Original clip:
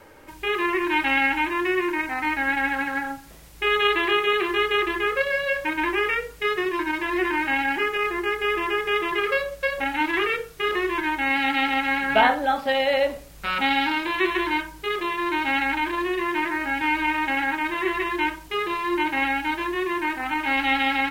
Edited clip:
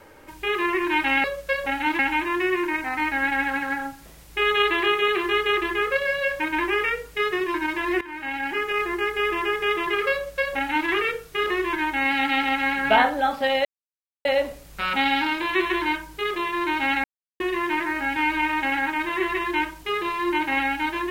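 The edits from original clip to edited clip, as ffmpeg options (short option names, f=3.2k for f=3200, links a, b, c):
-filter_complex "[0:a]asplit=7[a][b][c][d][e][f][g];[a]atrim=end=1.242[h];[b]atrim=start=9.378:end=10.132[i];[c]atrim=start=1.238:end=7.26,asetpts=PTS-STARTPTS,afade=t=out:st=6.018:d=0.004:c=hsin:silence=0.141254[j];[d]atrim=start=7.26:end=12.9,asetpts=PTS-STARTPTS,afade=t=in:d=0.76:silence=0.141254,afade=t=out:st=5.636:d=0.004:c=hsin,apad=pad_dur=0.6[k];[e]atrim=start=12.9:end=15.69,asetpts=PTS-STARTPTS,afade=t=in:d=0.004:c=hsin,afade=t=out:st=2.786:d=0.004:c=hsin[l];[f]atrim=start=15.69:end=16.05,asetpts=PTS-STARTPTS,volume=0[m];[g]atrim=start=16.05,asetpts=PTS-STARTPTS,afade=t=in:d=0.004:c=hsin[n];[h][i]acrossfade=d=0.004:c1=hsin:c2=hsin[o];[j][k][l][m][n]concat=n=5:v=0:a=1[p];[o][p]acrossfade=d=0.004:c1=hsin:c2=hsin"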